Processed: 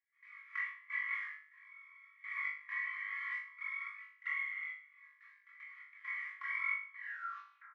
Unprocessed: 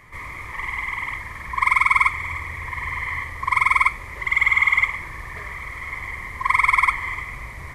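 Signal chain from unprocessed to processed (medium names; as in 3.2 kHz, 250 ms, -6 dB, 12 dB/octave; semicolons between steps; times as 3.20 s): tape stop on the ending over 0.78 s; low-pass 1.8 kHz 12 dB/octave; gate with hold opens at -24 dBFS; steep high-pass 1.3 kHz 48 dB/octave; comb 3.6 ms, depth 96%; compression 16:1, threshold -36 dBFS, peak gain reduction 21.5 dB; trance gate ".xx.xx....x.xxx" 67 bpm -24 dB; chorus voices 2, 0.26 Hz, delay 25 ms, depth 1.5 ms; rotary cabinet horn 5 Hz, later 1.2 Hz, at 1.00 s; on a send: flutter echo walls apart 3.4 m, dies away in 0.44 s; on the sum: tape noise reduction on one side only encoder only; trim +4 dB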